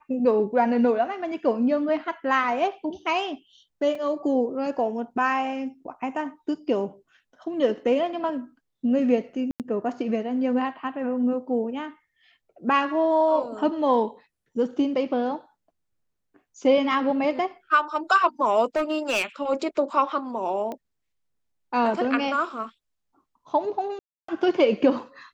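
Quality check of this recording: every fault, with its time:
3.95 gap 3.4 ms
9.51–9.6 gap 88 ms
18.76–19.25 clipped -19.5 dBFS
20.72 pop -21 dBFS
23.99–24.28 gap 0.294 s

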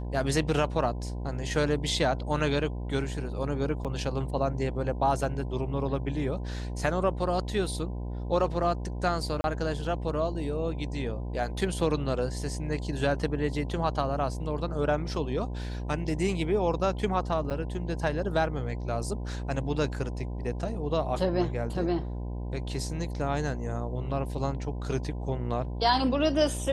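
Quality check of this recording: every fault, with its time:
buzz 60 Hz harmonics 17 -34 dBFS
3.84–3.85 gap 7.6 ms
9.41–9.44 gap 31 ms
17.5–17.51 gap 8.1 ms

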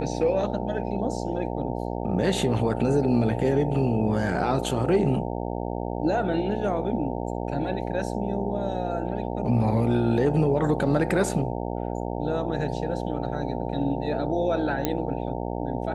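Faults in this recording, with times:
buzz 60 Hz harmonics 15 -30 dBFS
14.85 pop -9 dBFS

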